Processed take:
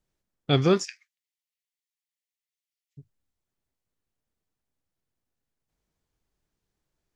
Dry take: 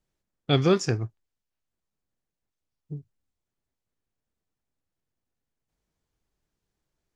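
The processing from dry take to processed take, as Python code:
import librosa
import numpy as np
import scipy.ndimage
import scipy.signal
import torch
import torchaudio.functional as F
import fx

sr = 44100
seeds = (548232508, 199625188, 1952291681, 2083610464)

y = fx.cheby1_highpass(x, sr, hz=1900.0, order=5, at=(0.83, 2.97), fade=0.02)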